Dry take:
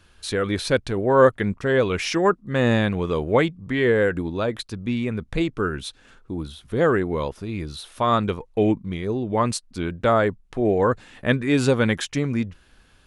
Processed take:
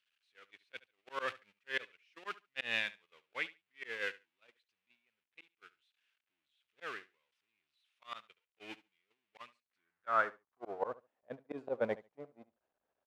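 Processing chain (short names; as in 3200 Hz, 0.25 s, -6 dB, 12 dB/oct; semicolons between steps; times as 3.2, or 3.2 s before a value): zero-crossing step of -22.5 dBFS; gate -14 dBFS, range -57 dB; in parallel at +1.5 dB: compressor, threshold -29 dBFS, peak gain reduction 18.5 dB; on the sum: auto swell 0.281 s; on a send: feedback echo 71 ms, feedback 15%, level -18.5 dB; on the sum: band-pass sweep 2600 Hz -> 630 Hz, 9.47–11.08; gain +5.5 dB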